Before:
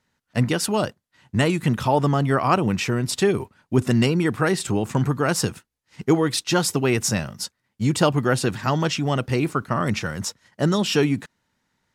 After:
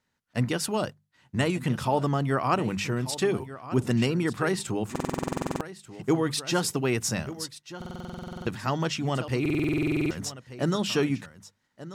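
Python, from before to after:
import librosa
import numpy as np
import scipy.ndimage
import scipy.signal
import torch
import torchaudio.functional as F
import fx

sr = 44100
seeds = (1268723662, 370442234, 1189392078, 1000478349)

p1 = fx.hum_notches(x, sr, base_hz=50, count=4)
p2 = p1 + fx.echo_single(p1, sr, ms=1187, db=-15.0, dry=0)
p3 = fx.buffer_glitch(p2, sr, at_s=(4.91, 7.77, 9.41), block=2048, repeats=14)
y = F.gain(torch.from_numpy(p3), -5.5).numpy()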